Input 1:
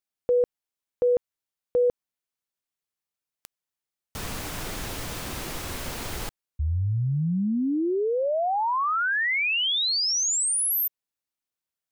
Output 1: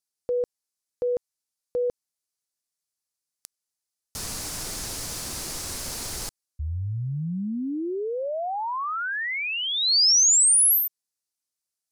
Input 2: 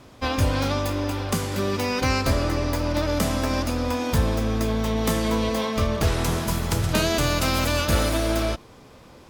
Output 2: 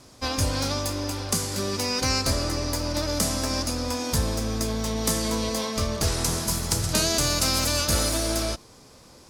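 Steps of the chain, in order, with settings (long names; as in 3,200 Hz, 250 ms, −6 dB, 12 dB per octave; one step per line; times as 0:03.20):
flat-topped bell 7,100 Hz +11 dB
level −4 dB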